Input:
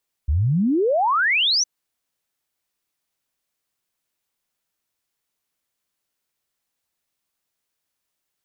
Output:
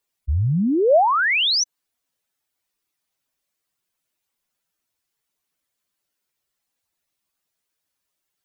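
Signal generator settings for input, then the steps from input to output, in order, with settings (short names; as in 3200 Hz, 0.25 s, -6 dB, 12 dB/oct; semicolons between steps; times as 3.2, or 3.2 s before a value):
log sweep 66 Hz -> 6200 Hz 1.36 s -16 dBFS
spectral contrast raised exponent 1.8; dynamic EQ 620 Hz, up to +7 dB, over -34 dBFS, Q 2.2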